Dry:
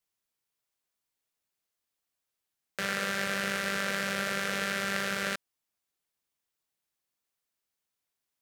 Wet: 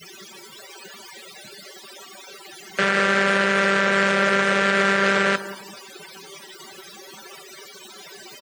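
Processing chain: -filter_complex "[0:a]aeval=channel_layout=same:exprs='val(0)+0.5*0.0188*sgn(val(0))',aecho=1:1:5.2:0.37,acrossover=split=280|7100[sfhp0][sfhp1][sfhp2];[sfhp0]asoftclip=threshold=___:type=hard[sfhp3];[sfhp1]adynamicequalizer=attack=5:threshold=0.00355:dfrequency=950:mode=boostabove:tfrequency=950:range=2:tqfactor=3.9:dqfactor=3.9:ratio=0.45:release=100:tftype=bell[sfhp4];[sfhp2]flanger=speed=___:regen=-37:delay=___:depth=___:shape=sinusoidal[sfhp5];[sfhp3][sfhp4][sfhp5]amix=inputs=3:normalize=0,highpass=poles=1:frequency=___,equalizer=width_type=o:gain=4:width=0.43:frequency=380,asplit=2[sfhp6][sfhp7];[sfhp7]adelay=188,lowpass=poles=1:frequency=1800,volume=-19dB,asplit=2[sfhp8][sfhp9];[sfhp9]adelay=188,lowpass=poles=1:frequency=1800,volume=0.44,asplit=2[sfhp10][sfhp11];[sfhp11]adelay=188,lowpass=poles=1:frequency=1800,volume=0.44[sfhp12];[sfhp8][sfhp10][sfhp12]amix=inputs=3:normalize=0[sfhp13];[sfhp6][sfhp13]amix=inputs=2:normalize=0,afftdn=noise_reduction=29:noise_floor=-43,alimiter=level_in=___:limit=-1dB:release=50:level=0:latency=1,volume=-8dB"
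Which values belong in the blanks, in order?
-40dB, 1.4, 5.4, 6, 73, 21dB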